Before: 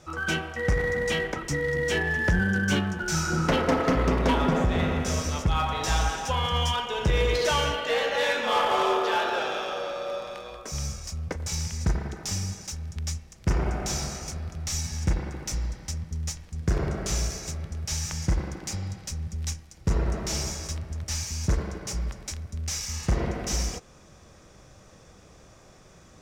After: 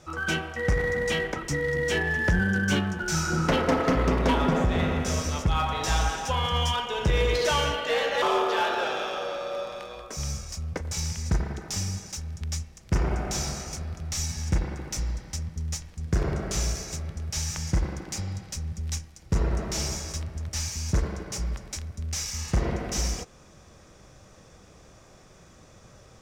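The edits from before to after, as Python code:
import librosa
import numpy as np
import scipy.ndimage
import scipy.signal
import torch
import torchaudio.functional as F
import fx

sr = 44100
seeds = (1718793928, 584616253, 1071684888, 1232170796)

y = fx.edit(x, sr, fx.cut(start_s=8.22, length_s=0.55), tone=tone)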